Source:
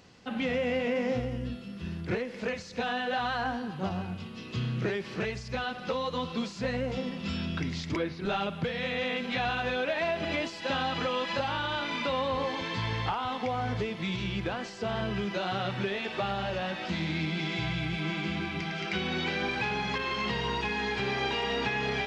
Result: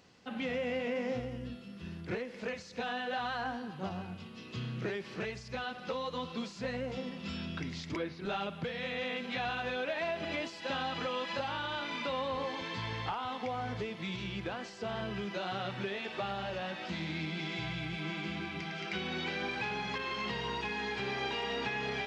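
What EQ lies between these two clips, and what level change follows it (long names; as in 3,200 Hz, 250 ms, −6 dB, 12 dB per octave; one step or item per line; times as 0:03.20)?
low-shelf EQ 110 Hz −6 dB
−5.0 dB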